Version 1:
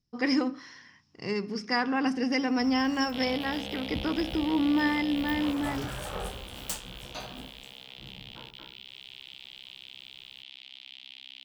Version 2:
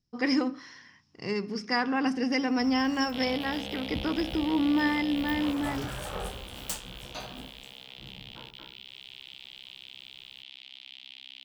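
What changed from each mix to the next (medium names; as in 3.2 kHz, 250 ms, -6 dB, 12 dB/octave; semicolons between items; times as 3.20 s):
no change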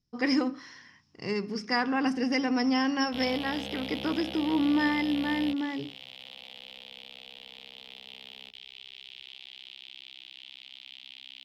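first sound: muted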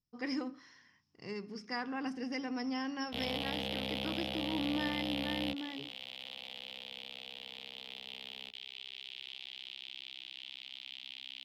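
speech -11.0 dB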